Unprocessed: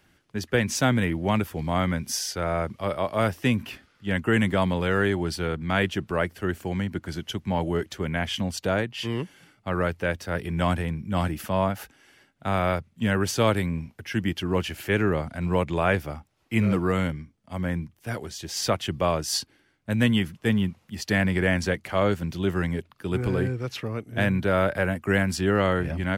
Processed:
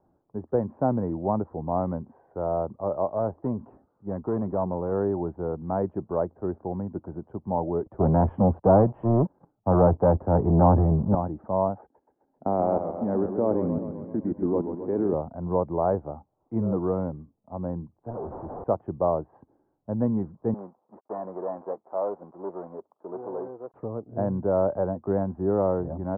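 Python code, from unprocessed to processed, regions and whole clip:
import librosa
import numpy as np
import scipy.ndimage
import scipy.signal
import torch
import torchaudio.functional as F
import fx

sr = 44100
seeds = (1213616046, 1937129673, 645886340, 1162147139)

y = fx.chain(x, sr, fx.block_float(bits=7),
    fx.tube_stage(drive_db=17.0, bias=0.35), at=(3.1, 4.92))
y = fx.chain(y, sr, fx.low_shelf(hz=190.0, db=9.0),
    fx.leveller(passes=3),
    fx.band_widen(depth_pct=40), at=(7.86, 11.15))
y = fx.chain(y, sr, fx.curve_eq(hz=(110.0, 260.0, 1300.0, 2300.0, 5300.0), db=(0, 12, 3, 13, -14)),
    fx.level_steps(step_db=23),
    fx.echo_warbled(ms=130, feedback_pct=65, rate_hz=2.8, cents=157, wet_db=-8.0), at=(11.81, 15.14))
y = fx.chain(y, sr, fx.delta_mod(bps=16000, step_db=-45.5),
    fx.level_steps(step_db=10),
    fx.leveller(passes=5), at=(18.1, 18.64))
y = fx.chain(y, sr, fx.dead_time(dead_ms=0.24),
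    fx.highpass(hz=450.0, slope=12),
    fx.transformer_sat(knee_hz=1700.0), at=(20.54, 23.74))
y = scipy.signal.sosfilt(scipy.signal.butter(6, 940.0, 'lowpass', fs=sr, output='sos'), y)
y = fx.low_shelf(y, sr, hz=270.0, db=-11.0)
y = y * 10.0 ** (3.5 / 20.0)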